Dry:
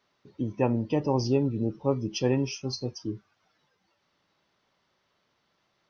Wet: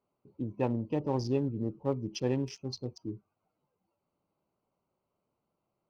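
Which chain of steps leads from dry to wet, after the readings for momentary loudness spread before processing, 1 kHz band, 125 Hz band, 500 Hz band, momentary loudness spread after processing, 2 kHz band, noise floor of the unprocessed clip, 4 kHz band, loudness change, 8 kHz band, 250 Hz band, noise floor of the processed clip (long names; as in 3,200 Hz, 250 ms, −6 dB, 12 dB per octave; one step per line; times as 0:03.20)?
10 LU, −5.5 dB, −5.0 dB, −5.5 dB, 10 LU, −8.0 dB, −74 dBFS, −7.5 dB, −5.5 dB, can't be measured, −5.0 dB, −84 dBFS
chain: adaptive Wiener filter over 25 samples
level −5 dB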